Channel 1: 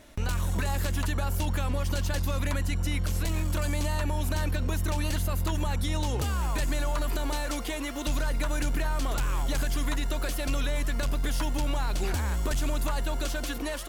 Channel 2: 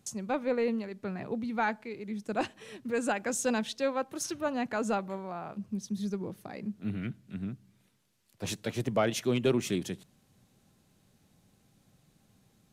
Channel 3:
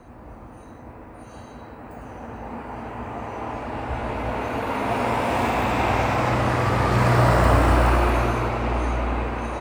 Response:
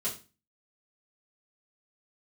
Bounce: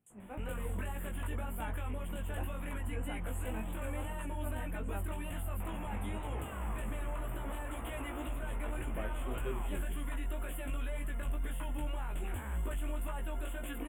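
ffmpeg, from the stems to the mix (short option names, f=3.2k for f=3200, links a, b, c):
-filter_complex "[0:a]adelay=200,volume=-2dB[a];[1:a]volume=-12.5dB[b];[2:a]alimiter=limit=-16.5dB:level=0:latency=1,adelay=100,volume=-13dB,asplit=3[c][d][e];[c]atrim=end=4.14,asetpts=PTS-STARTPTS,afade=t=out:st=4.136:d=0.004:c=hsin[f];[d]atrim=start=4.14:end=5.6,asetpts=PTS-STARTPTS,volume=0[g];[e]atrim=start=5.6,asetpts=PTS-STARTPTS,afade=t=in:d=0.004:c=hsin[h];[f][g][h]concat=n=3:v=0:a=1[i];[a][i]amix=inputs=2:normalize=0,alimiter=level_in=4.5dB:limit=-24dB:level=0:latency=1:release=82,volume=-4.5dB,volume=0dB[j];[b][j]amix=inputs=2:normalize=0,flanger=delay=17.5:depth=2.8:speed=1.9,asuperstop=centerf=5100:order=8:qfactor=1.1"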